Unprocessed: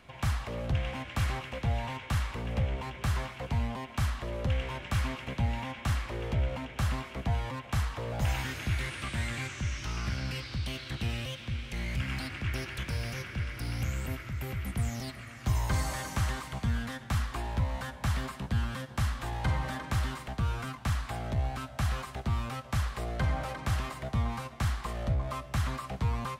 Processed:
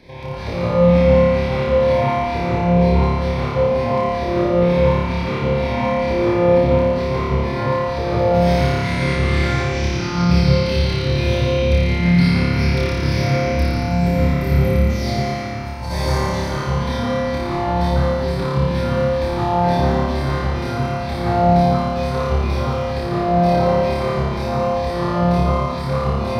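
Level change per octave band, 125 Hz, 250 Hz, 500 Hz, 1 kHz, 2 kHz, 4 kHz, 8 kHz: +13.0, +19.5, +25.0, +17.0, +11.5, +11.5, +5.0 decibels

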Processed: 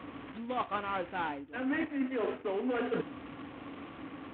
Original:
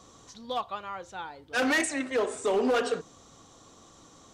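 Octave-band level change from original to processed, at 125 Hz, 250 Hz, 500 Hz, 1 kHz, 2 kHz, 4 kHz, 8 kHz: +3.0 dB, −1.5 dB, −6.5 dB, −3.0 dB, −8.5 dB, −11.0 dB, below −40 dB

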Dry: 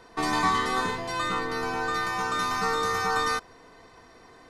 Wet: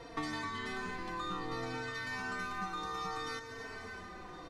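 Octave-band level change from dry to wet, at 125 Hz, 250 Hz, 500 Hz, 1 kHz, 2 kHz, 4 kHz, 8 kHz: −7.5, −9.0, −12.0, −13.5, −10.5, −11.5, −14.5 decibels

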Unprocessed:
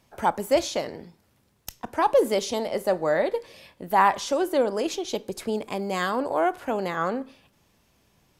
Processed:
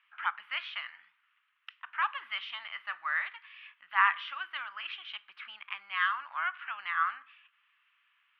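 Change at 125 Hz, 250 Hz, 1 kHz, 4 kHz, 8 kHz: below −40 dB, below −40 dB, −8.0 dB, −4.0 dB, below −40 dB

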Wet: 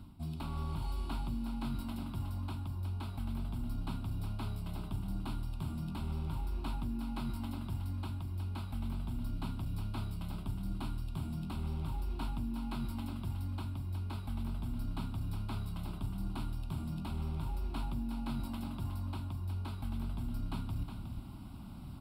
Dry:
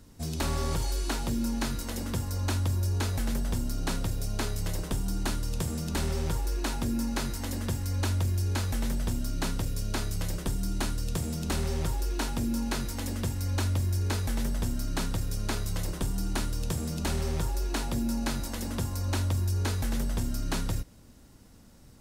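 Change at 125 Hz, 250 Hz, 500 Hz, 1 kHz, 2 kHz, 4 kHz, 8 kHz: −7.0, −7.0, −15.0, −8.0, −15.5, −14.0, −23.0 decibels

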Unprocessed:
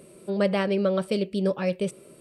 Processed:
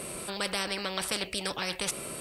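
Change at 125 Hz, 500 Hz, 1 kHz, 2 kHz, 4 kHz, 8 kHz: −13.0 dB, −12.5 dB, −1.5 dB, +1.5 dB, +7.0 dB, can't be measured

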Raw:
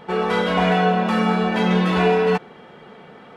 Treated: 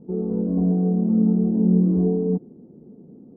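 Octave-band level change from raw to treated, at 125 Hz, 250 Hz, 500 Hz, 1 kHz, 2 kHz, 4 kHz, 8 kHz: +2.0 dB, +2.5 dB, −7.0 dB, below −20 dB, below −40 dB, below −40 dB, can't be measured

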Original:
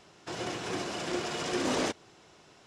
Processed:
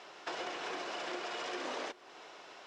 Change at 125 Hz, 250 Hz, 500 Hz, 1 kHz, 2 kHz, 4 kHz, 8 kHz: −23.5, −13.0, −7.5, −3.5, −3.5, −5.5, −12.0 decibels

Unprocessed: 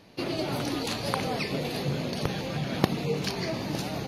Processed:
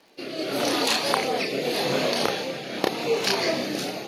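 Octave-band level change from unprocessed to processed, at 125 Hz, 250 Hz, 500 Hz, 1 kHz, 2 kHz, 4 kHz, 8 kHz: −8.5, +1.0, +6.5, +6.0, +7.5, +8.0, +8.5 decibels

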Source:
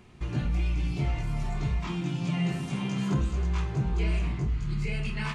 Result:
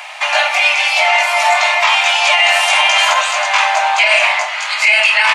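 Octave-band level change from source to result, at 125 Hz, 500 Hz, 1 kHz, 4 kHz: below −40 dB, +20.5 dB, +28.5 dB, +30.0 dB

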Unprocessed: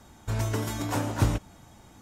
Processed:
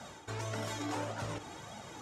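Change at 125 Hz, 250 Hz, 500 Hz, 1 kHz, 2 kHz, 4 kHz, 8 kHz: −13.5, −10.5, −5.5, −5.5, −5.0, −4.5, −7.0 decibels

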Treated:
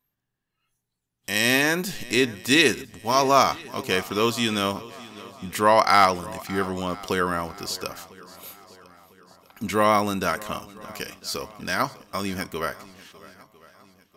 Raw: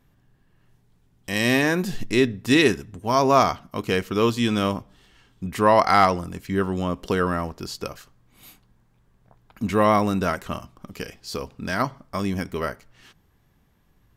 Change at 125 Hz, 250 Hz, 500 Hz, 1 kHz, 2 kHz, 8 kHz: −5.5, −4.0, −2.0, 0.0, +2.0, +5.5 decibels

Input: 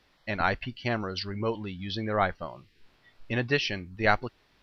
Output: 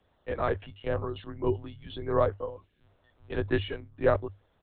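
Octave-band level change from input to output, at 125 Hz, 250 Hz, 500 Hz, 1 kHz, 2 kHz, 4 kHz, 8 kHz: −0.5 dB, −2.0 dB, +3.0 dB, −5.0 dB, −9.5 dB, −9.5 dB, can't be measured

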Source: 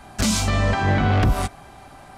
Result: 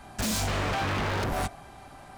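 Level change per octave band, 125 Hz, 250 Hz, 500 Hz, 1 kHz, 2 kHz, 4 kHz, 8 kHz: −11.5, −10.0, −6.0, −6.0, −6.0, −5.5, −7.0 decibels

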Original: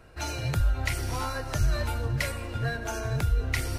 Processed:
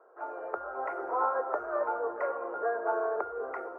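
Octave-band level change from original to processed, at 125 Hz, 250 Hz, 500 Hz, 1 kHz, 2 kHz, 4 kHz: below −40 dB, −8.5 dB, +6.0 dB, +5.5 dB, −6.5 dB, below −40 dB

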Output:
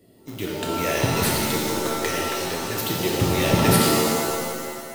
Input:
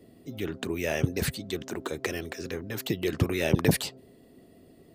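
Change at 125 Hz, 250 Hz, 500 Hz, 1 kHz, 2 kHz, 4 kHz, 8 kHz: +5.0, +7.0, +7.5, +16.5, +7.5, +11.0, +12.5 decibels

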